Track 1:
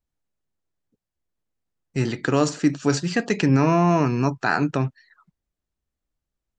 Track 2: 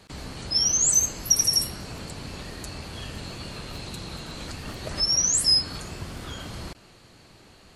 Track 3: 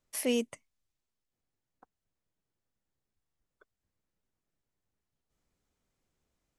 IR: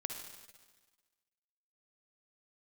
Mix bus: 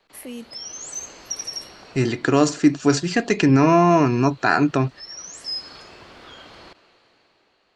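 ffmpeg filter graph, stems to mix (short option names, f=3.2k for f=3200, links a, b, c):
-filter_complex "[0:a]aecho=1:1:2.9:0.33,volume=-4dB,asplit=2[a][b];[1:a]acrossover=split=310 5000:gain=0.141 1 0.0794[c][d][e];[c][d][e]amix=inputs=3:normalize=0,acrossover=split=180|3000[f][g][h];[g]acompressor=threshold=-39dB:ratio=6[i];[f][i][h]amix=inputs=3:normalize=0,volume=-11dB,asplit=2[j][k];[k]volume=-11.5dB[l];[2:a]equalizer=f=5.7k:t=o:w=1.3:g=-12,acrossover=split=230|3000[m][n][o];[n]acompressor=threshold=-40dB:ratio=6[p];[m][p][o]amix=inputs=3:normalize=0,volume=-1dB,asplit=2[q][r];[r]volume=-19dB[s];[b]apad=whole_len=341790[t];[j][t]sidechaincompress=threshold=-29dB:ratio=8:attack=8.3:release=1140[u];[3:a]atrim=start_sample=2205[v];[l][s]amix=inputs=2:normalize=0[w];[w][v]afir=irnorm=-1:irlink=0[x];[a][u][q][x]amix=inputs=4:normalize=0,dynaudnorm=f=110:g=13:m=8dB"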